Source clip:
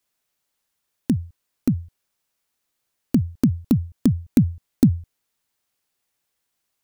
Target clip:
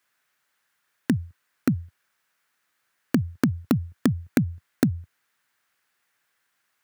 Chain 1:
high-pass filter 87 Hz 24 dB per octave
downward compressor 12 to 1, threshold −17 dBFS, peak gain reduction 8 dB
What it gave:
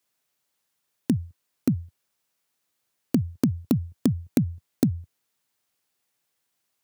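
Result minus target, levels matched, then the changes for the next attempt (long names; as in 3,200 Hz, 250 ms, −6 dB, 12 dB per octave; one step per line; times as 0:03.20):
2,000 Hz band −11.5 dB
add after downward compressor: parametric band 1,600 Hz +14 dB 1.3 octaves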